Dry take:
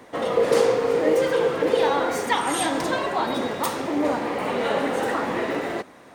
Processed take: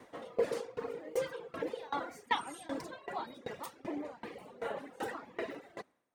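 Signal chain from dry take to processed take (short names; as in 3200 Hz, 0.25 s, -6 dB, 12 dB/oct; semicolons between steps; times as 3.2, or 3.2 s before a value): reverb removal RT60 1.4 s; 4.24–4.76 bell 760 Hz -> 5700 Hz -11 dB 1.4 oct; dB-ramp tremolo decaying 2.6 Hz, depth 23 dB; gain -7 dB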